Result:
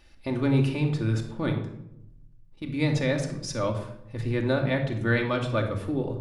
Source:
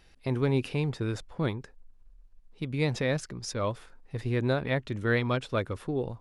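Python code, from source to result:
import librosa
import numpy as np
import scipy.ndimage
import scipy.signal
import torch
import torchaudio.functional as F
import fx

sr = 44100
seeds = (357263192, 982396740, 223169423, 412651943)

y = fx.level_steps(x, sr, step_db=11, at=(1.58, 2.67))
y = fx.room_shoebox(y, sr, seeds[0], volume_m3=2200.0, walls='furnished', distance_m=2.5)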